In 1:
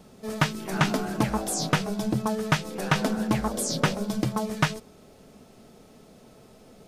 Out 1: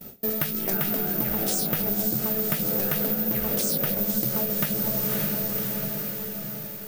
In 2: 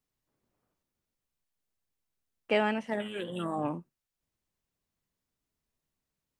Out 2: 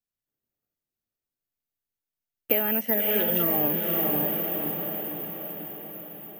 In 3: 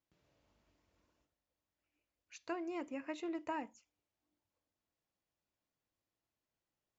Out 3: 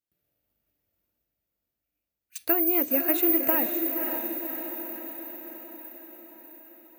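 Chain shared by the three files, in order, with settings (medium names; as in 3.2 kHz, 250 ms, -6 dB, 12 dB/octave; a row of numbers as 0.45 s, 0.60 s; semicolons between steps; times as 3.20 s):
gate with hold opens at -40 dBFS; peak limiter -19.5 dBFS; peaking EQ 1 kHz -10 dB 0.36 oct; careless resampling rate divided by 3×, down none, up zero stuff; dynamic bell 510 Hz, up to +5 dB, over -52 dBFS, Q 4.9; on a send: echo that smears into a reverb 551 ms, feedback 59%, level -6 dB; on the sum: compression 5:1, threshold -28 dBFS; normalise loudness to -24 LUFS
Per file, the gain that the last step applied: +6.5 dB, +9.0 dB, +14.0 dB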